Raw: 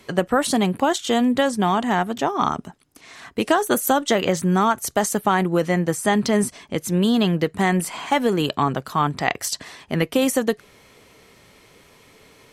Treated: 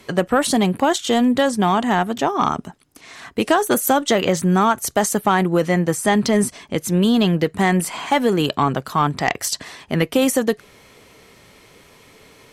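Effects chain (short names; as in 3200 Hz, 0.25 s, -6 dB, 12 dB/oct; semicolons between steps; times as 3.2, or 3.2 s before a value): sine folder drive 4 dB, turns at -1.5 dBFS; gain -5 dB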